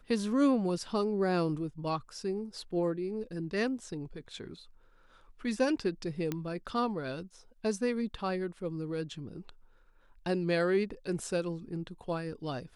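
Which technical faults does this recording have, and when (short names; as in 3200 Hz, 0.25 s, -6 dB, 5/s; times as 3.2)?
6.32 pop -19 dBFS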